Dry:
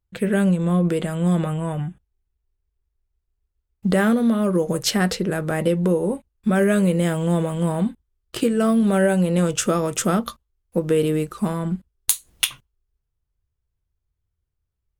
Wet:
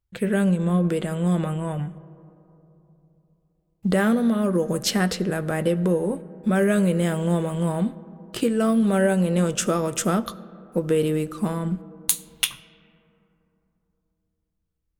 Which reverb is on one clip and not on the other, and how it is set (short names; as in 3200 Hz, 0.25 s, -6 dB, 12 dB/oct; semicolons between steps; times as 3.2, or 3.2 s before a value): digital reverb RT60 3.4 s, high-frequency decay 0.3×, pre-delay 30 ms, DRR 18 dB; gain -2 dB